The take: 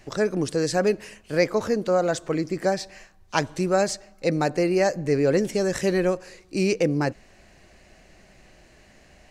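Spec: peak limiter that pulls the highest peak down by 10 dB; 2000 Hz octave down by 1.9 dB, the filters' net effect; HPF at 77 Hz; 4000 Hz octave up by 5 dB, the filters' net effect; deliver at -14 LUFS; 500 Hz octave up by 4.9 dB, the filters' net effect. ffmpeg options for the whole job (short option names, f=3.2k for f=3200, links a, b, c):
-af "highpass=77,equalizer=f=500:t=o:g=6,equalizer=f=2k:t=o:g=-4.5,equalizer=f=4k:t=o:g=7,volume=9.5dB,alimiter=limit=-3.5dB:level=0:latency=1"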